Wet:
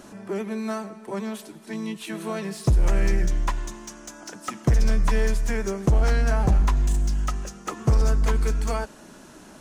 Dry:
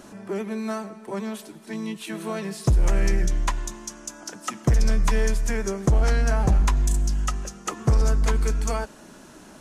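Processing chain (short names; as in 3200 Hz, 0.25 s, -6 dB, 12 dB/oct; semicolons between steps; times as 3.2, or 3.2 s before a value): slew limiter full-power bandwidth 120 Hz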